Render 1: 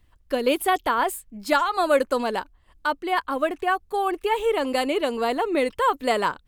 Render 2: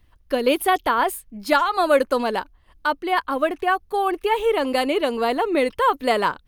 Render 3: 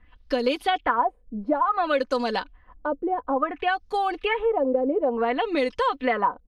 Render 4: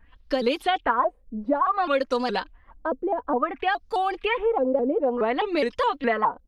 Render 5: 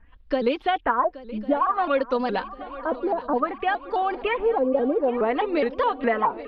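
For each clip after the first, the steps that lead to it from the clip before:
parametric band 7,600 Hz −9.5 dB 0.21 octaves; level +2.5 dB
auto-filter low-pass sine 0.57 Hz 460–6,000 Hz; comb filter 4 ms, depth 52%; downward compressor 2.5 to 1, threshold −23 dBFS, peak gain reduction 10.5 dB
pitch modulation by a square or saw wave saw up 4.8 Hz, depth 160 cents
high-frequency loss of the air 270 metres; feedback echo with a long and a short gap by turns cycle 1,100 ms, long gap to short 3 to 1, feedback 56%, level −17 dB; level +1.5 dB

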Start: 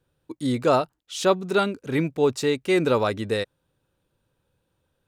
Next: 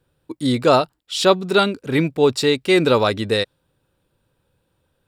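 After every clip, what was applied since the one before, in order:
notch filter 6,300 Hz, Q 7.7
dynamic equaliser 4,100 Hz, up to +6 dB, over −45 dBFS, Q 1.2
level +5 dB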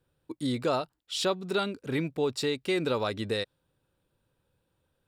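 downward compressor 2 to 1, threshold −21 dBFS, peak gain reduction 7.5 dB
level −7.5 dB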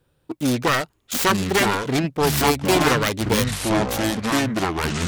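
phase distortion by the signal itself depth 0.59 ms
delay with pitch and tempo change per echo 741 ms, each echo −5 semitones, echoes 3
level +9 dB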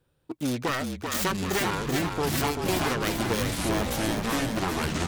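downward compressor, threshold −18 dBFS, peak gain reduction 6 dB
on a send: echo with shifted repeats 387 ms, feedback 60%, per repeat −41 Hz, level −5 dB
on the sum: level −5.5 dB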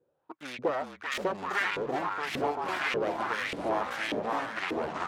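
auto-filter band-pass saw up 1.7 Hz 410–2,600 Hz
level +5.5 dB

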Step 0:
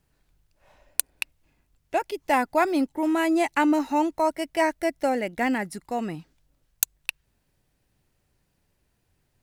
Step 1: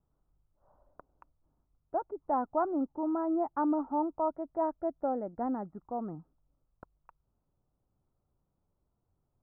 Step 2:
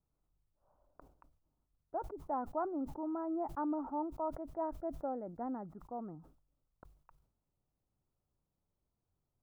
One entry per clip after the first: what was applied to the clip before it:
Chebyshev low-pass filter 1,300 Hz, order 5; level −7 dB
level that may fall only so fast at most 100 dB per second; level −7 dB

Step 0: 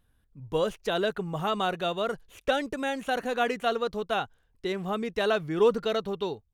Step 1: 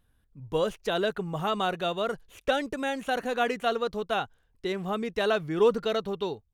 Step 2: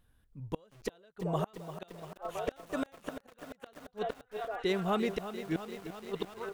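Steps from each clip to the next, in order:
no processing that can be heard
echo through a band-pass that steps 375 ms, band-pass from 560 Hz, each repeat 0.7 octaves, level −9 dB; gate with flip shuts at −20 dBFS, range −34 dB; feedback echo at a low word length 344 ms, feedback 80%, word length 8 bits, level −11 dB

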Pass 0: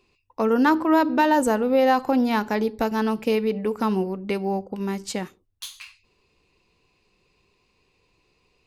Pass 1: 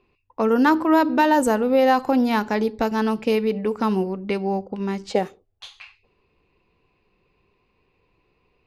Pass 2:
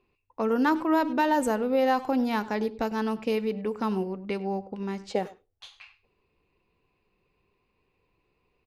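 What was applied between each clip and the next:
gain on a spectral selection 0:05.10–0:06.07, 370–870 Hz +10 dB; low-pass that shuts in the quiet parts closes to 2,300 Hz, open at −17.5 dBFS; level +1.5 dB
far-end echo of a speakerphone 100 ms, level −17 dB; level −6.5 dB

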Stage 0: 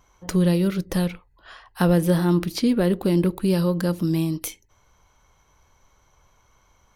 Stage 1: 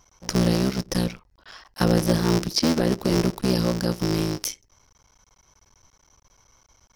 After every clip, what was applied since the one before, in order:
sub-harmonics by changed cycles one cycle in 3, muted
parametric band 5,400 Hz +14.5 dB 0.43 octaves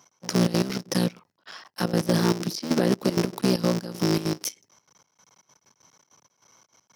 high-pass filter 140 Hz 24 dB per octave
brickwall limiter −12.5 dBFS, peak gain reduction 7.5 dB
gate pattern "x..xxx.x.x.xxx.x" 194 BPM −12 dB
level +2 dB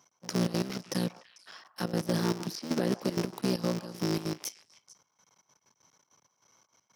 echo through a band-pass that steps 148 ms, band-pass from 930 Hz, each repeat 1.4 octaves, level −10.5 dB
level −7 dB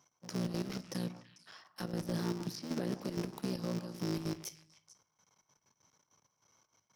low-shelf EQ 98 Hz +11 dB
brickwall limiter −21 dBFS, peak gain reduction 5.5 dB
on a send at −14 dB: convolution reverb RT60 0.55 s, pre-delay 7 ms
on the sum: level −5.5 dB

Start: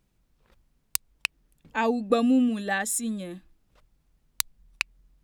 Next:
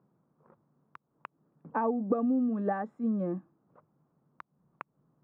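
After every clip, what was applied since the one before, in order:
downward compressor 12 to 1, threshold −30 dBFS, peak gain reduction 15 dB
Chebyshev band-pass filter 140–1,200 Hz, order 3
level +6 dB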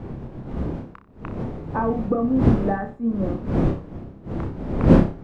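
wind on the microphone 260 Hz −29 dBFS
flutter between parallel walls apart 5.2 metres, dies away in 0.29 s
level +4.5 dB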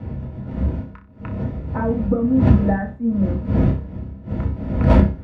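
wave folding −10 dBFS
convolution reverb RT60 0.10 s, pre-delay 3 ms, DRR 3 dB
level −7.5 dB

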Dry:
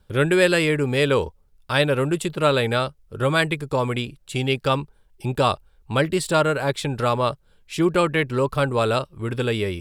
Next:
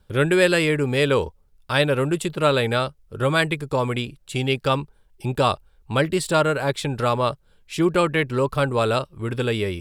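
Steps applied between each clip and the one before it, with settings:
no processing that can be heard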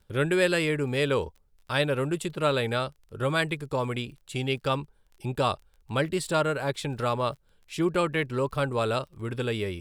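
surface crackle 25 per second −38 dBFS
level −6 dB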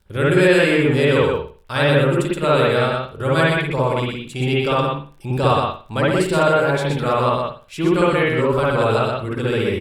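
single-tap delay 123 ms −4 dB
convolution reverb, pre-delay 55 ms, DRR −4.5 dB
level +2.5 dB

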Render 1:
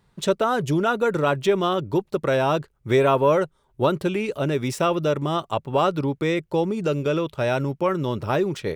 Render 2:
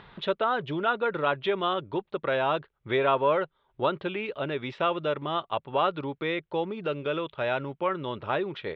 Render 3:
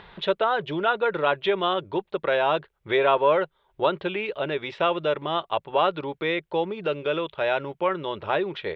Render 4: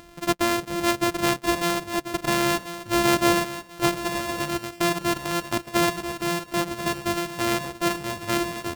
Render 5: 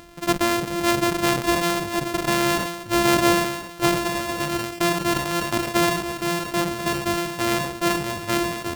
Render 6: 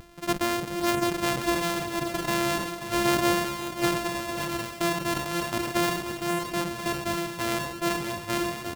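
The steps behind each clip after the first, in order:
Chebyshev low-pass filter 3,600 Hz, order 4; low-shelf EQ 370 Hz −11.5 dB; upward compression, threshold −34 dBFS; level −1.5 dB
thirty-one-band graphic EQ 125 Hz −12 dB, 250 Hz −11 dB, 1,250 Hz −4 dB; level +4.5 dB
samples sorted by size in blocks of 128 samples; on a send: repeating echo 1,038 ms, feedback 37%, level −11 dB
level that may fall only so fast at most 58 dB per second; level +1.5 dB
pitch vibrato 0.37 Hz 13 cents; on a send: single-tap delay 536 ms −10.5 dB; on the sum: level −5.5 dB

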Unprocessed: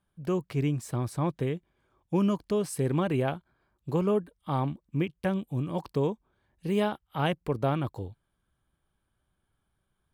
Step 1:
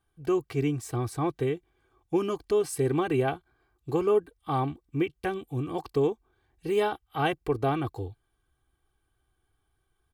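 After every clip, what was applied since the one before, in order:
comb filter 2.6 ms, depth 76%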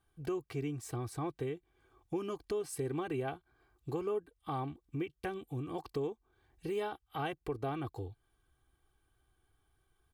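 downward compressor 2 to 1, threshold −42 dBFS, peak gain reduction 12.5 dB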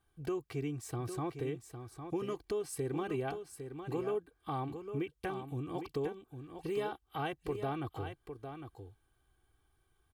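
single-tap delay 806 ms −8.5 dB

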